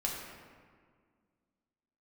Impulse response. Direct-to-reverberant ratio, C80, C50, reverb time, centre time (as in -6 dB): -3.0 dB, 3.0 dB, 1.5 dB, 1.8 s, 78 ms